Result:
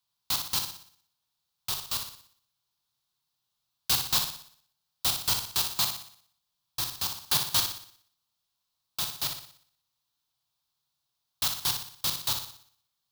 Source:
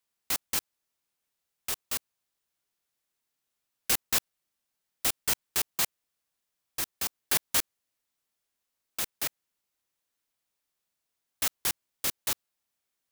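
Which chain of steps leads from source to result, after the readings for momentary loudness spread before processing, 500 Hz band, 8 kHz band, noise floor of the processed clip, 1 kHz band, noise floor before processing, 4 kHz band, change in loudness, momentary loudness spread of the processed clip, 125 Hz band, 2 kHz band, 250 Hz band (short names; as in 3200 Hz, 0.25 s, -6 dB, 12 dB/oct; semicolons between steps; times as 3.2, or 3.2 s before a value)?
9 LU, -3.0 dB, 0.0 dB, -82 dBFS, +3.0 dB, -84 dBFS, +6.5 dB, +1.5 dB, 15 LU, +7.5 dB, -3.0 dB, -1.0 dB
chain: graphic EQ 125/250/500/1000/2000/4000/8000 Hz +10/-5/-7/+7/-10/+10/-4 dB; on a send: flutter echo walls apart 10.3 m, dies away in 0.57 s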